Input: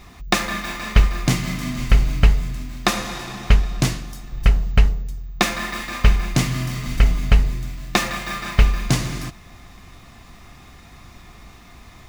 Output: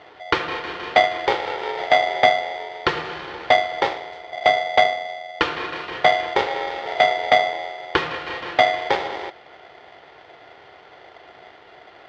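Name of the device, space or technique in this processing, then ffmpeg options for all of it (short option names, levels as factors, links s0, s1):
ring modulator pedal into a guitar cabinet: -af "aeval=exprs='val(0)*sgn(sin(2*PI*680*n/s))':c=same,highpass=82,equalizer=f=210:t=q:w=4:g=-5,equalizer=f=390:t=q:w=4:g=6,equalizer=f=610:t=q:w=4:g=-6,equalizer=f=1300:t=q:w=4:g=4,equalizer=f=2700:t=q:w=4:g=-3,lowpass=f=3700:w=0.5412,lowpass=f=3700:w=1.3066,volume=0.891"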